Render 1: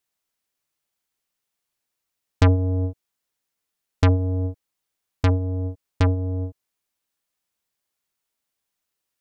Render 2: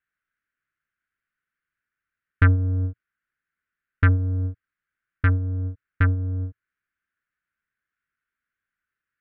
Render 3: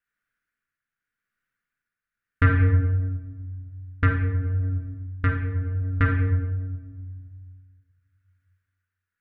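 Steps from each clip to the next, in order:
drawn EQ curve 110 Hz 0 dB, 340 Hz −6 dB, 870 Hz −17 dB, 1,500 Hz +12 dB, 5,600 Hz −28 dB
rectangular room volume 1,300 cubic metres, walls mixed, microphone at 1.8 metres; shaped tremolo triangle 0.86 Hz, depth 50%

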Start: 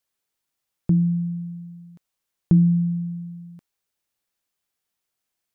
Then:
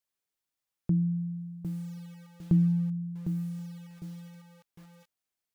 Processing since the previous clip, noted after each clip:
feedback echo at a low word length 754 ms, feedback 35%, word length 7 bits, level −8 dB
level −7.5 dB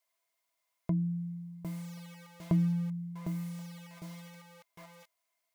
low-shelf EQ 370 Hz −11.5 dB
hollow resonant body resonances 660/1,000/2,100 Hz, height 18 dB, ringing for 75 ms
level +5 dB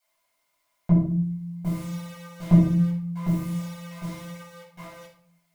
convolution reverb RT60 0.55 s, pre-delay 5 ms, DRR −7.5 dB

